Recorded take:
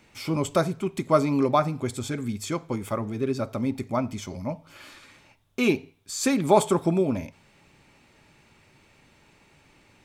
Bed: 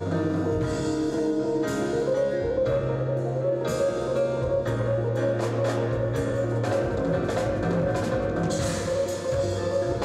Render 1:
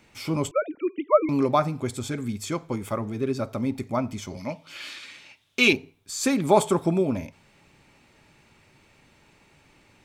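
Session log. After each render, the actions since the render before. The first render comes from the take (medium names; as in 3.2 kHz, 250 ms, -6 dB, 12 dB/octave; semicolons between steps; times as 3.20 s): 0.51–1.29 s: formants replaced by sine waves; 4.37–5.73 s: frequency weighting D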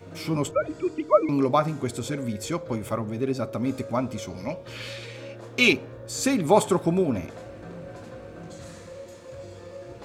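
add bed -15.5 dB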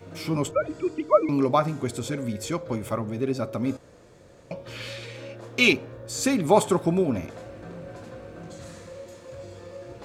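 3.77–4.51 s: room tone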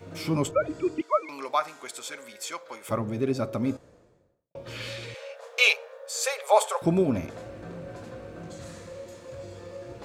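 1.01–2.89 s: high-pass 910 Hz; 3.50–4.55 s: studio fade out; 5.14–6.82 s: brick-wall FIR high-pass 430 Hz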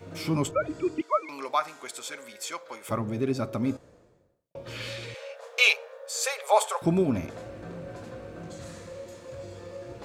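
dynamic bell 520 Hz, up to -4 dB, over -34 dBFS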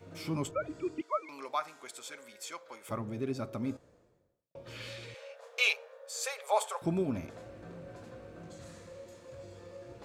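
trim -7.5 dB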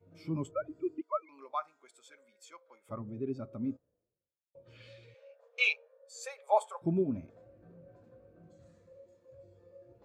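spectral contrast expander 1.5:1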